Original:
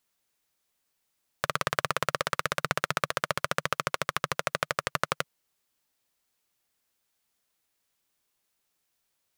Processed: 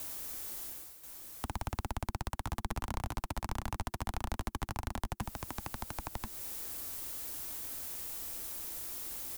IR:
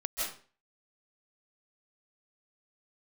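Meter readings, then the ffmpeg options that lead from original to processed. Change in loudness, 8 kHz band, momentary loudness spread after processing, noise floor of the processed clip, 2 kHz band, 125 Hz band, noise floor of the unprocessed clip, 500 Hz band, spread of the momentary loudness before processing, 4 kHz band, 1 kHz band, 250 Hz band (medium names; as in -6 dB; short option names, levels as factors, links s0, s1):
-9.0 dB, -2.0 dB, 3 LU, -73 dBFS, -15.5 dB, +1.0 dB, -78 dBFS, -13.0 dB, 3 LU, -11.5 dB, -9.5 dB, +0.5 dB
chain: -filter_complex "[0:a]areverse,acompressor=mode=upward:threshold=0.0355:ratio=2.5,areverse,equalizer=f=2900:w=0.36:g=-11.5,asplit=2[s0][s1];[s1]aecho=0:1:1034:0.422[s2];[s0][s2]amix=inputs=2:normalize=0,afreqshift=-360,equalizer=f=170:w=1.2:g=-12,acrossover=split=130[s3][s4];[s4]acompressor=threshold=0.00316:ratio=4[s5];[s3][s5]amix=inputs=2:normalize=0,asoftclip=type=tanh:threshold=0.0112,volume=4.73"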